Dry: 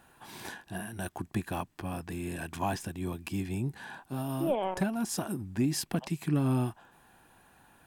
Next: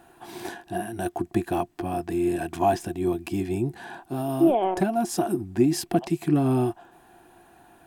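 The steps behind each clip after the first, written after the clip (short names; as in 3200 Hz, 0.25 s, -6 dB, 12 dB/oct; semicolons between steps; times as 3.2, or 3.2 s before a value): small resonant body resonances 350/700 Hz, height 15 dB, ringing for 60 ms; gain +2.5 dB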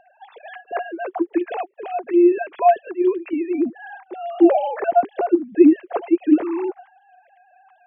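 sine-wave speech; gain +6 dB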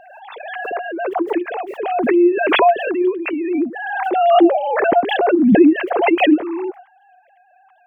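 backwards sustainer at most 31 dB/s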